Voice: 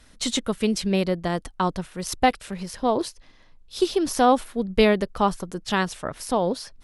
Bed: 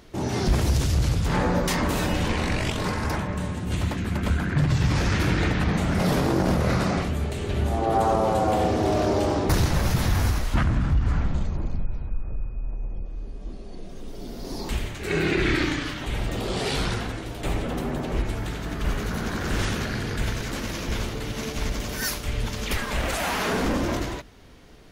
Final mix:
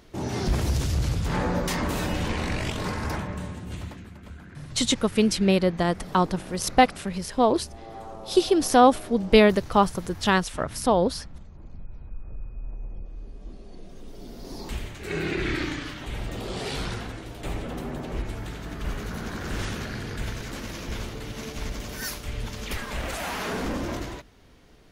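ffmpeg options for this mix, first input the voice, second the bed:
ffmpeg -i stem1.wav -i stem2.wav -filter_complex "[0:a]adelay=4550,volume=2dB[link_01];[1:a]volume=11dB,afade=type=out:start_time=3.16:duration=0.99:silence=0.158489,afade=type=in:start_time=11.54:duration=1.11:silence=0.199526[link_02];[link_01][link_02]amix=inputs=2:normalize=0" out.wav

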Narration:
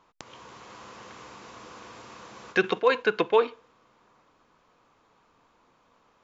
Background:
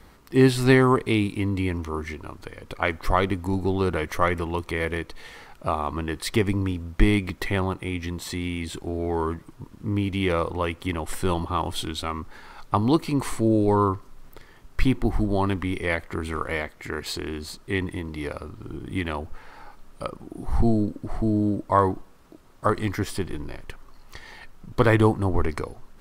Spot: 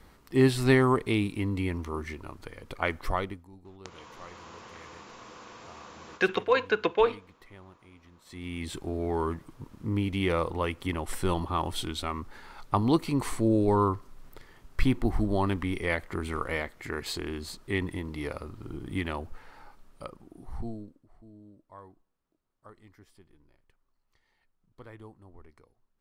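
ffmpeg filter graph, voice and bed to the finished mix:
ffmpeg -i stem1.wav -i stem2.wav -filter_complex "[0:a]adelay=3650,volume=-2dB[link_01];[1:a]volume=18dB,afade=type=out:start_time=2.97:duration=0.5:silence=0.0841395,afade=type=in:start_time=8.24:duration=0.45:silence=0.0749894,afade=type=out:start_time=18.92:duration=2.14:silence=0.0501187[link_02];[link_01][link_02]amix=inputs=2:normalize=0" out.wav

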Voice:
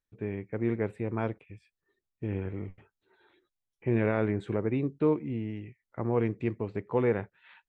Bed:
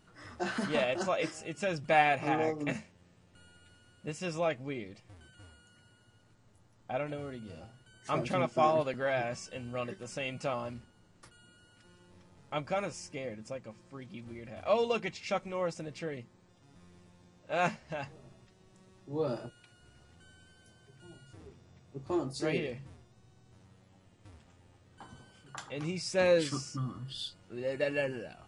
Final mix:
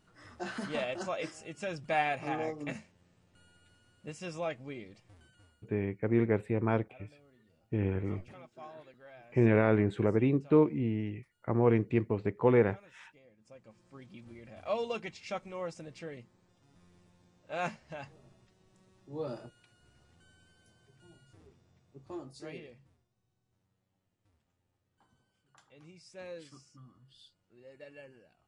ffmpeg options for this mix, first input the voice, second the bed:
ffmpeg -i stem1.wav -i stem2.wav -filter_complex "[0:a]adelay=5500,volume=2dB[link_01];[1:a]volume=12.5dB,afade=type=out:start_time=5.21:duration=0.54:silence=0.133352,afade=type=in:start_time=13.37:duration=0.59:silence=0.141254,afade=type=out:start_time=20.84:duration=2.25:silence=0.199526[link_02];[link_01][link_02]amix=inputs=2:normalize=0" out.wav

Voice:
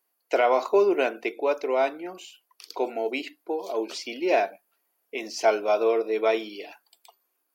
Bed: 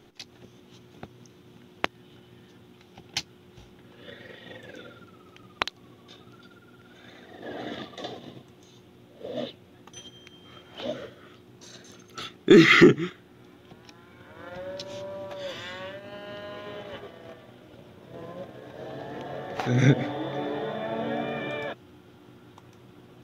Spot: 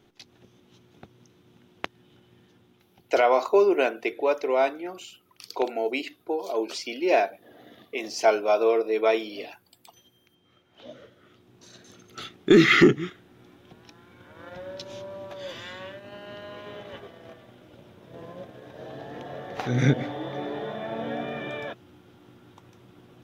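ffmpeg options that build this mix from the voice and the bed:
ffmpeg -i stem1.wav -i stem2.wav -filter_complex "[0:a]adelay=2800,volume=1dB[link_01];[1:a]volume=7.5dB,afade=type=out:start_time=2.39:duration=0.9:silence=0.354813,afade=type=in:start_time=10.73:duration=1.37:silence=0.223872[link_02];[link_01][link_02]amix=inputs=2:normalize=0" out.wav

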